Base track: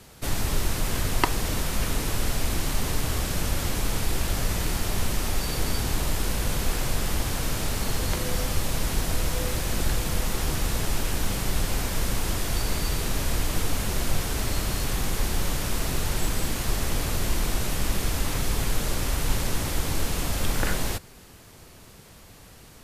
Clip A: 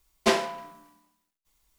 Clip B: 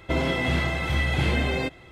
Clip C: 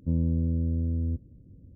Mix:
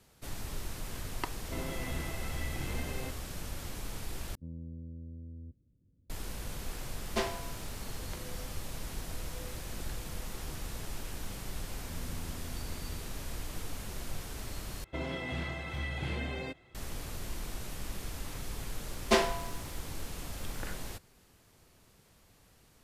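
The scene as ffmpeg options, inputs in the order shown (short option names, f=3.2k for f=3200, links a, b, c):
-filter_complex "[2:a]asplit=2[a][b];[3:a]asplit=2[c][d];[1:a]asplit=2[e][f];[0:a]volume=-14dB[g];[a]highshelf=f=4.5k:g=-10[h];[d]alimiter=limit=-22.5dB:level=0:latency=1:release=71[i];[g]asplit=3[j][k][l];[j]atrim=end=4.354[m];[c]atrim=end=1.75,asetpts=PTS-STARTPTS,volume=-18dB[n];[k]atrim=start=6.096:end=14.844[o];[b]atrim=end=1.91,asetpts=PTS-STARTPTS,volume=-12.5dB[p];[l]atrim=start=16.746[q];[h]atrim=end=1.91,asetpts=PTS-STARTPTS,volume=-15dB,afade=t=in:d=0.004:c=hsin,afade=t=out:st=1.906:d=0.004:c=hsin,adelay=1420[r];[e]atrim=end=1.78,asetpts=PTS-STARTPTS,volume=-10.5dB,afade=t=in:d=0.004:c=hsin,afade=t=out:st=1.776:d=0.004:c=hsin,adelay=304290S[s];[i]atrim=end=1.75,asetpts=PTS-STARTPTS,volume=-16dB,afade=t=in:d=0.004:c=hsin,afade=t=out:st=1.746:d=0.004:c=hsin,adelay=11820[t];[f]atrim=end=1.78,asetpts=PTS-STARTPTS,volume=-3dB,afade=t=in:d=0.004:c=hsin,afade=t=out:st=1.776:d=0.004:c=hsin,adelay=18850[u];[m][n]acrossfade=d=0.004:c1=hsin:c2=hsin[v];[v][o]acrossfade=d=0.004:c1=hsin:c2=hsin[w];[w][p]acrossfade=d=0.004:c1=hsin:c2=hsin[x];[x][q]acrossfade=d=0.004:c1=hsin:c2=hsin[y];[y][r][s][t][u]amix=inputs=5:normalize=0"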